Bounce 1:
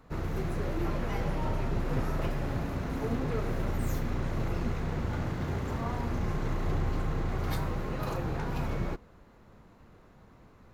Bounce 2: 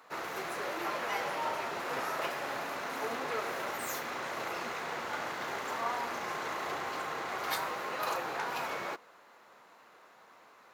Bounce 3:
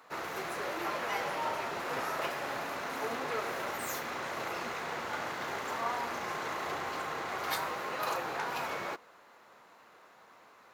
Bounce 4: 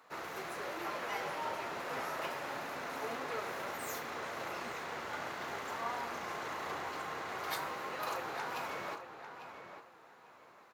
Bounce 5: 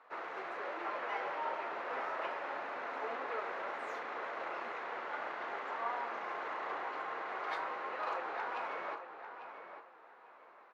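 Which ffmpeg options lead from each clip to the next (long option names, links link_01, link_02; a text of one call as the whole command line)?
ffmpeg -i in.wav -af "highpass=750,volume=6.5dB" out.wav
ffmpeg -i in.wav -af "lowshelf=frequency=110:gain=7" out.wav
ffmpeg -i in.wav -filter_complex "[0:a]asplit=2[link_01][link_02];[link_02]adelay=847,lowpass=frequency=3200:poles=1,volume=-9dB,asplit=2[link_03][link_04];[link_04]adelay=847,lowpass=frequency=3200:poles=1,volume=0.27,asplit=2[link_05][link_06];[link_06]adelay=847,lowpass=frequency=3200:poles=1,volume=0.27[link_07];[link_01][link_03][link_05][link_07]amix=inputs=4:normalize=0,volume=-4.5dB" out.wav
ffmpeg -i in.wav -af "highpass=410,lowpass=2200,volume=1.5dB" out.wav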